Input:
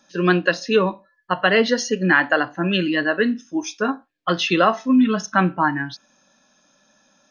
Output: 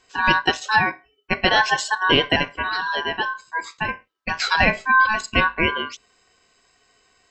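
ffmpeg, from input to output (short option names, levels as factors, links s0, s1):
-filter_complex "[0:a]asettb=1/sr,asplit=3[s0][s1][s2];[s0]atrim=end=2.464[s3];[s1]atrim=start=2.46:end=4.4,asetpts=PTS-STARTPTS,afade=t=in:d=0.004:c=qsin,afade=t=out:st=1.936:d=0.004:c=qsin,acrossover=split=420|3100[s4][s5][s6];[s4]acompressor=threshold=0.0562:ratio=4[s7];[s5]acompressor=threshold=0.0631:ratio=4[s8];[s6]acompressor=threshold=0.00631:ratio=4[s9];[s7][s8][s9]amix=inputs=3:normalize=0[s10];[s2]atrim=start=4.396[s11];[s3][s10]acrossfade=d=0.004:c1=hsin:c2=qsin[s12];[s12][s11]acrossfade=d=0.004:c1=qsin:c2=hsin,aeval=exprs='val(0)*sin(2*PI*1300*n/s)':c=same,volume=1.26"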